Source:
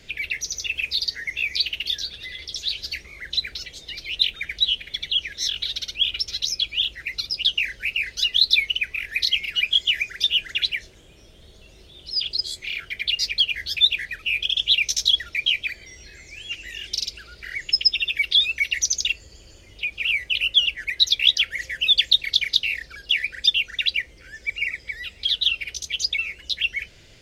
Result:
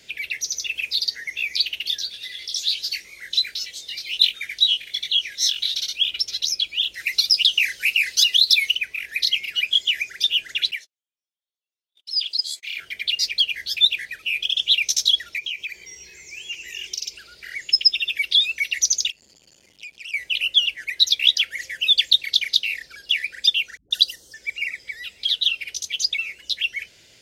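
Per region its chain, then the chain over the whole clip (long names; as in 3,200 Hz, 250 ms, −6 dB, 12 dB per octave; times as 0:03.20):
0:02.09–0:06.02: chorus effect 1.3 Hz, delay 20 ms, depth 2.8 ms + high-shelf EQ 2,400 Hz +8 dB
0:06.94–0:08.75: high-shelf EQ 2,100 Hz +11.5 dB + downward compressor, threshold −12 dBFS
0:10.71–0:12.77: high-pass filter 1,400 Hz 6 dB per octave + noise gate −45 dBFS, range −42 dB
0:15.38–0:17.15: EQ curve with evenly spaced ripples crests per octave 0.76, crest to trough 9 dB + downward compressor 4 to 1, threshold −26 dBFS
0:19.10–0:20.14: high-pass filter 58 Hz 6 dB per octave + downward compressor 3 to 1, threshold −35 dBFS + saturating transformer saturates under 2,700 Hz
0:23.77–0:24.34: Butterworth band-reject 2,300 Hz, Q 1.1 + high-shelf EQ 2,800 Hz +11.5 dB + all-pass dispersion highs, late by 138 ms, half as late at 350 Hz
whole clip: high-pass filter 210 Hz 6 dB per octave; high-shelf EQ 3,800 Hz +9 dB; notch filter 1,200 Hz, Q 15; level −3.5 dB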